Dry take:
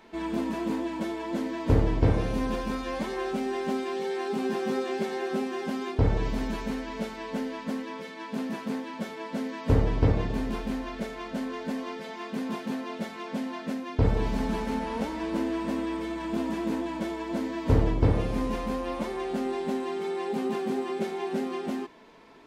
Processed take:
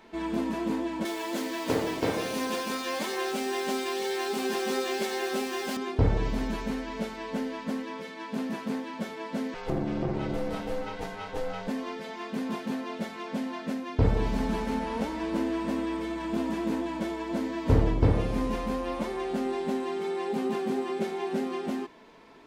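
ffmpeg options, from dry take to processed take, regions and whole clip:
-filter_complex "[0:a]asettb=1/sr,asplit=3[a][b][c];[a]atrim=end=1.054[d];[b]atrim=start=1.05:end=5.77,asetpts=PTS-STARTPTS,afade=t=in:d=0.004:c=qsin,afade=t=out:st=4.716:d=0.004:c=qsin,highpass=270,highshelf=f=2.5k:g=11,acrusher=bits=6:mix=0:aa=0.5[e];[c]atrim=start=5.766[f];[d][e]acrossfade=d=0.004:c1=hsin:c2=qsin[g];[g][f]acrossfade=d=0.004:c1=qsin:c2=hsin,asettb=1/sr,asplit=3[h][i][j];[h]atrim=end=9.544[k];[i]atrim=start=9.54:end=11.68,asetpts=PTS-STARTPTS,afade=t=in:d=0.004:c=qsin,afade=t=out:st=2.136:d=0.004:c=qsin,aecho=1:1:7.5:0.89,atrim=end_sample=94374,acompressor=threshold=-23dB:ratio=4:attack=3.2:release=140:knee=1:detection=peak,aeval=exprs='val(0)*sin(2*PI*250*n/s)':c=same[l];[j]atrim=start=11.676[m];[k][l]acrossfade=d=0.004:c1=hsin:c2=qsin[n];[n][m]acrossfade=d=0.004:c1=qsin:c2=hsin"

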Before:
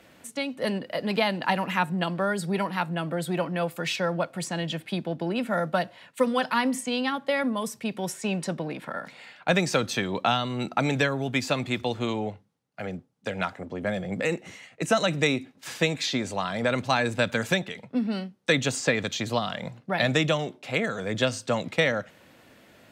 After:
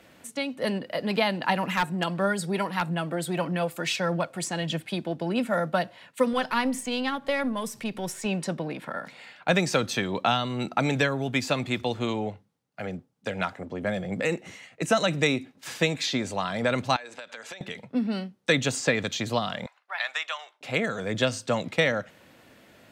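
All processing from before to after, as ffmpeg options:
-filter_complex "[0:a]asettb=1/sr,asplit=3[a][b][c];[a]atrim=end=1.634[d];[b]atrim=start=1.63:end=5.58,asetpts=PTS-STARTPTS,afade=t=in:d=0.004:c=qsin,afade=t=out:st=3.946:d=0.004:c=qsin,equalizer=f=7.8k:w=1.2:g=3.5,aeval=exprs='0.178*(abs(mod(val(0)/0.178+3,4)-2)-1)':c=same,aphaser=in_gain=1:out_gain=1:delay=3.4:decay=0.28:speed=1.6:type=triangular[e];[c]atrim=start=5.576[f];[d][e]acrossfade=d=0.004:c1=hsin:c2=qsin[g];[g][f]acrossfade=d=0.004:c1=qsin:c2=hsin,asettb=1/sr,asplit=3[h][i][j];[h]atrim=end=6.334[k];[i]atrim=start=6.33:end=8.26,asetpts=PTS-STARTPTS,afade=t=in:d=0.004:c=qsin,afade=t=out:st=1.926:d=0.004:c=qsin,aeval=exprs='if(lt(val(0),0),0.708*val(0),val(0))':c=same,acompressor=mode=upward:threshold=-32dB:ratio=2.5:attack=3.2:release=140:knee=2.83:detection=peak[l];[j]atrim=start=8.256[m];[k][l]acrossfade=d=0.004:c1=hsin:c2=qsin[n];[n][m]acrossfade=d=0.004:c1=qsin:c2=hsin,asettb=1/sr,asplit=3[o][p][q];[o]atrim=end=16.964[r];[p]atrim=start=16.96:end=17.61,asetpts=PTS-STARTPTS,afade=t=in:d=0.004:c=qsin,afade=t=out:st=0.646:d=0.004:c=qsin,highpass=540,lowpass=7.6k,acompressor=threshold=-36dB:ratio=16:attack=3.2:release=140:knee=1:detection=peak[s];[q]atrim=start=17.606[t];[r][s]acrossfade=d=0.004:c1=hsin:c2=qsin[u];[u][t]acrossfade=d=0.004:c1=qsin:c2=hsin,asettb=1/sr,asplit=3[v][w][x];[v]atrim=end=19.664[y];[w]atrim=start=19.66:end=20.61,asetpts=PTS-STARTPTS,afade=t=in:d=0.004:c=qsin,afade=t=out:st=0.946:d=0.004:c=qsin,highpass=f=970:w=0.5412,highpass=f=970:w=1.3066,highshelf=f=3.7k:g=-10.5[z];[x]atrim=start=20.606[aa];[y][z]acrossfade=d=0.004:c1=hsin:c2=qsin[ab];[ab][aa]acrossfade=d=0.004:c1=qsin:c2=hsin"

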